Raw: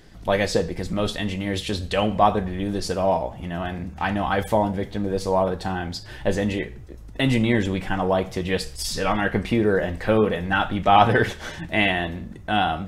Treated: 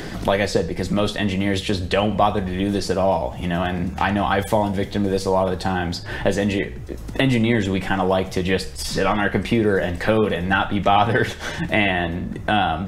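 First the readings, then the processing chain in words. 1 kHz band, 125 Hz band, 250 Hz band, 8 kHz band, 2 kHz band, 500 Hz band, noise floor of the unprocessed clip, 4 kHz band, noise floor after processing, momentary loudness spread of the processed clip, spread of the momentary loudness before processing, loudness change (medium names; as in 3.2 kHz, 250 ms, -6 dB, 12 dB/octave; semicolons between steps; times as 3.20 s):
+1.0 dB, +3.0 dB, +3.0 dB, +1.5 dB, +2.5 dB, +2.0 dB, -40 dBFS, +2.5 dB, -32 dBFS, 5 LU, 10 LU, +2.0 dB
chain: three bands compressed up and down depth 70%; trim +2 dB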